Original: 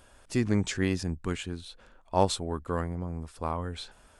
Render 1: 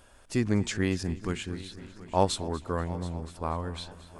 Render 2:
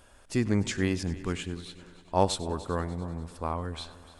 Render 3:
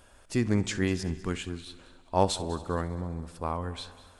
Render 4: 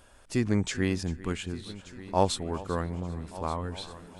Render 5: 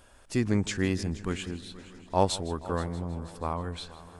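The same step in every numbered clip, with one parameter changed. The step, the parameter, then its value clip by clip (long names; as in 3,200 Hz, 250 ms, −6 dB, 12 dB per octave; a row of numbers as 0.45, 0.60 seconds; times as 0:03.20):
echo machine with several playback heads, delay time: 242, 98, 66, 393, 159 milliseconds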